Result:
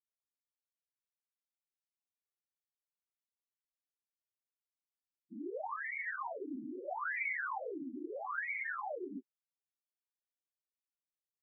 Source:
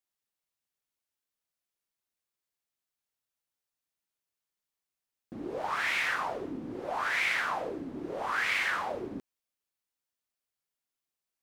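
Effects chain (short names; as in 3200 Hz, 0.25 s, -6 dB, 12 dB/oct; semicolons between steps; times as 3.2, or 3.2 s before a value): loudest bins only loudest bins 4; 7.03–7.49 resonant low shelf 770 Hz -12.5 dB, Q 1.5; gain -2.5 dB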